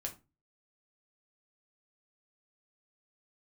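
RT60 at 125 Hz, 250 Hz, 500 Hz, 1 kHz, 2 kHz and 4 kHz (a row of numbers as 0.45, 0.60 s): 0.45, 0.40, 0.30, 0.25, 0.25, 0.20 s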